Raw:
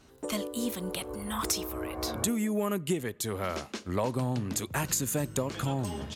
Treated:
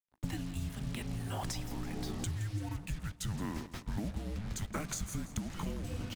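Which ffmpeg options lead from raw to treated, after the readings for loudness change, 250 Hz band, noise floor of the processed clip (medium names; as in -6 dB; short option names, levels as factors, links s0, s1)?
-7.5 dB, -7.5 dB, -56 dBFS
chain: -filter_complex "[0:a]equalizer=f=14000:t=o:w=0.4:g=-14,agate=range=0.251:threshold=0.01:ratio=16:detection=peak,equalizer=f=250:t=o:w=1:g=6,equalizer=f=500:t=o:w=1:g=12,equalizer=f=2000:t=o:w=1:g=5,acompressor=threshold=0.0178:ratio=12,acrusher=bits=7:mix=0:aa=0.5,afreqshift=-320,asplit=2[s0][s1];[s1]aecho=0:1:169|338|507|676|845:0.178|0.0942|0.05|0.0265|0.014[s2];[s0][s2]amix=inputs=2:normalize=0,volume=1.12"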